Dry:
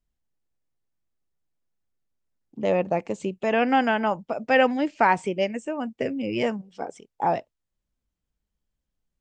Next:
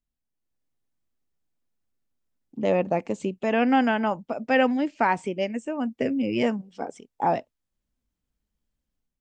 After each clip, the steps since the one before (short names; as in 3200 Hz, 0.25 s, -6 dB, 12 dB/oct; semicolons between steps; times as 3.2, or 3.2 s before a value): bell 250 Hz +5.5 dB 0.46 oct; AGC gain up to 7.5 dB; gain -7 dB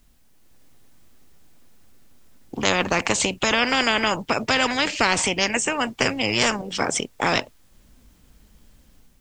spectral compressor 4:1; gain +6.5 dB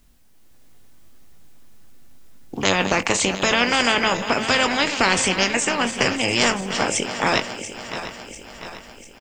regenerating reverse delay 0.348 s, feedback 71%, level -11 dB; doubler 21 ms -11 dB; gain +1 dB